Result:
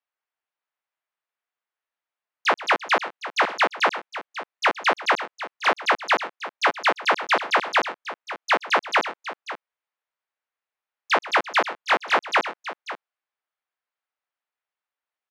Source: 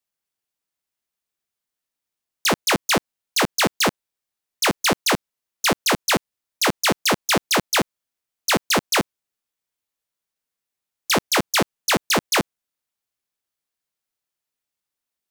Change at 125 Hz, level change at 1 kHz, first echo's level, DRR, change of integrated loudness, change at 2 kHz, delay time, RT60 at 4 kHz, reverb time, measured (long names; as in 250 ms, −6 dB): below −20 dB, +3.0 dB, −17.5 dB, no reverb audible, −2.0 dB, +1.5 dB, 124 ms, no reverb audible, no reverb audible